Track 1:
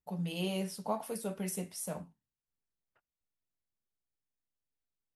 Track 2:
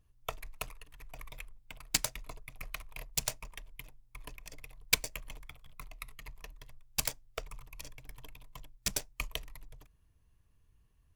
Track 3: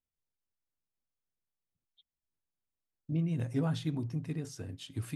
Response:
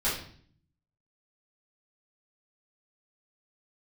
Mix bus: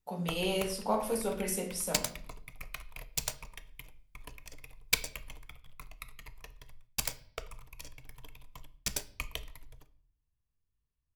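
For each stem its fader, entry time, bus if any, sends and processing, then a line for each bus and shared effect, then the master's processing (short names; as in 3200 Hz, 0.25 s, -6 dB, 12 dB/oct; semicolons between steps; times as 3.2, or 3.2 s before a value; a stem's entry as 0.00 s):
+2.5 dB, 0.00 s, send -9.5 dB, HPF 240 Hz
-1.5 dB, 0.00 s, send -20.5 dB, gate -53 dBFS, range -17 dB
off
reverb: on, RT60 0.55 s, pre-delay 4 ms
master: dry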